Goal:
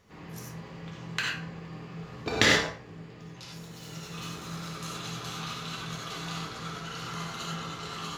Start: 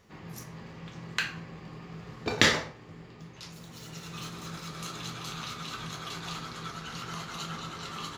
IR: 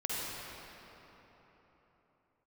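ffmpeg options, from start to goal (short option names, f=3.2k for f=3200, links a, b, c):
-filter_complex "[1:a]atrim=start_sample=2205,atrim=end_sample=4410,asetrate=41895,aresample=44100[a];[0:a][a]afir=irnorm=-1:irlink=0"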